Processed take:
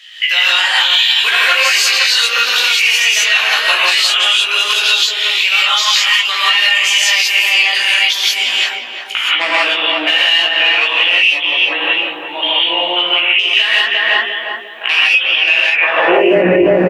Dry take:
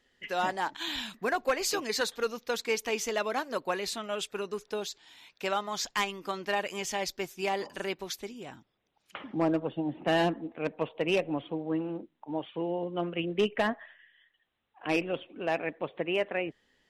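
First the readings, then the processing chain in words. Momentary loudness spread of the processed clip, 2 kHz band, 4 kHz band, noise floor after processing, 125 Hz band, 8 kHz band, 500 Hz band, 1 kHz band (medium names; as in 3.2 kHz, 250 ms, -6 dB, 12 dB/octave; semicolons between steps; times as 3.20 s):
5 LU, +25.5 dB, +29.5 dB, -26 dBFS, no reading, +19.5 dB, +12.0 dB, +14.0 dB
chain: bass shelf 240 Hz +7 dB; on a send: filtered feedback delay 351 ms, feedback 54%, low-pass 980 Hz, level -5 dB; on the sum: high-pass sweep 2.8 kHz -> 77 Hz, 15.77–16.47 s; compression 6:1, threshold -44 dBFS, peak gain reduction 23 dB; tone controls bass -5 dB, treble -7 dB; doubling 17 ms -2.5 dB; gated-style reverb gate 200 ms rising, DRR -7 dB; loudness maximiser +30.5 dB; trim -1 dB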